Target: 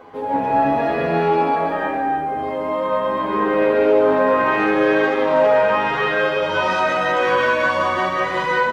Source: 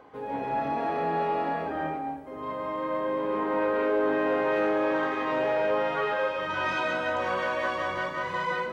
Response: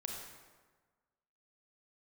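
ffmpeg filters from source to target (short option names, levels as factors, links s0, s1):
-filter_complex "[0:a]aecho=1:1:324:0.335,asplit=2[s0][s1];[1:a]atrim=start_sample=2205[s2];[s1][s2]afir=irnorm=-1:irlink=0,volume=1[s3];[s0][s3]amix=inputs=2:normalize=0,asplit=2[s4][s5];[s5]adelay=9.5,afreqshift=0.78[s6];[s4][s6]amix=inputs=2:normalize=1,volume=2.51"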